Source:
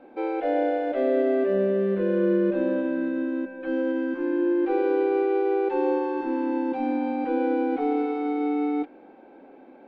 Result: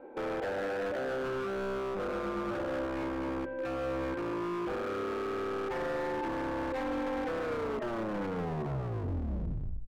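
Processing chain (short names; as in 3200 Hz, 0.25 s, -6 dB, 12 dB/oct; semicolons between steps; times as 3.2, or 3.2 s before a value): tape stop at the end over 2.47 s; LPF 1900 Hz; notches 50/100/150 Hz; comb 2.1 ms, depth 47%; limiter -24 dBFS, peak gain reduction 11.5 dB; wavefolder -29.5 dBFS; spring tank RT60 1 s, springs 44 ms, DRR 13.5 dB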